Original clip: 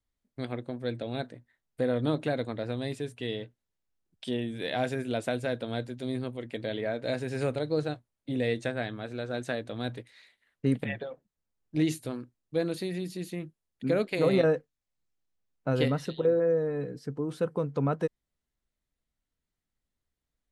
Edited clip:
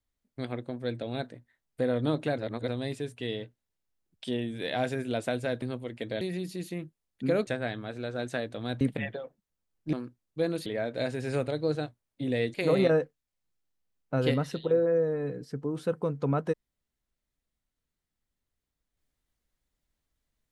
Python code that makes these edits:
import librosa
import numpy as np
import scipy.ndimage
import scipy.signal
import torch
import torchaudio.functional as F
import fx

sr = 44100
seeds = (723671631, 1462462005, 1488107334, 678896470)

y = fx.edit(x, sr, fx.reverse_span(start_s=2.38, length_s=0.3),
    fx.cut(start_s=5.62, length_s=0.53),
    fx.swap(start_s=6.74, length_s=1.88, other_s=12.82, other_length_s=1.26),
    fx.cut(start_s=9.96, length_s=0.72),
    fx.cut(start_s=11.8, length_s=0.29), tone=tone)